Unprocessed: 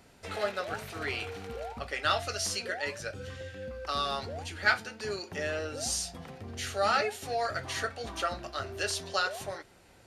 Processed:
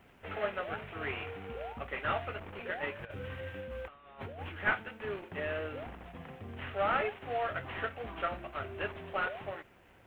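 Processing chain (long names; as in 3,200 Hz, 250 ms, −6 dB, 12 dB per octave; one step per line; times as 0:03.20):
variable-slope delta modulation 16 kbit/s
bit reduction 12 bits
0:02.99–0:04.49: compressor whose output falls as the input rises −41 dBFS, ratio −0.5
level −2 dB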